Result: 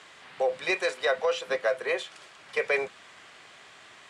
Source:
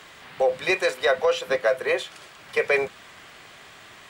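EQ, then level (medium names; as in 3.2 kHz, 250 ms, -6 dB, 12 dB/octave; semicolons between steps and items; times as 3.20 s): high-pass 47 Hz; low-pass 10 kHz 24 dB/octave; bass shelf 200 Hz -8.5 dB; -4.0 dB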